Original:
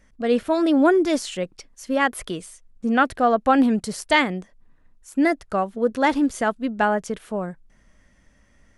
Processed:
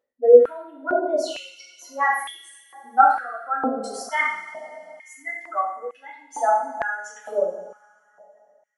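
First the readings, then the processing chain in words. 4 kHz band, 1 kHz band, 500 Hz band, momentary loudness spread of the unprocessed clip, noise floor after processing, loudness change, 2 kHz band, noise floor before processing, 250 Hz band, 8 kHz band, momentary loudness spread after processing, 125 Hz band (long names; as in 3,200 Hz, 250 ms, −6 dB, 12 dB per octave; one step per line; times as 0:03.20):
−7.5 dB, +1.5 dB, +2.5 dB, 13 LU, −61 dBFS, 0.0 dB, −1.5 dB, −59 dBFS, −15.5 dB, −3.5 dB, 22 LU, below −20 dB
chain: expanding power law on the bin magnitudes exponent 2.4
coupled-rooms reverb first 0.62 s, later 2.8 s, from −18 dB, DRR −8 dB
high-pass on a step sequencer 2.2 Hz 500–2,800 Hz
level −10.5 dB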